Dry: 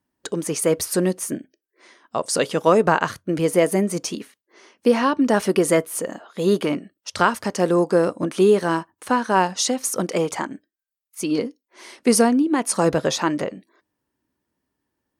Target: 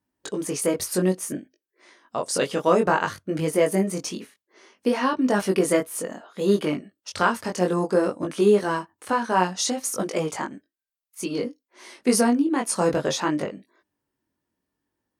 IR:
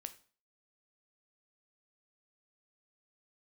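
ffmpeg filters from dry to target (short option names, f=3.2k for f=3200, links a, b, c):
-af "flanger=delay=19.5:depth=2.6:speed=0.59"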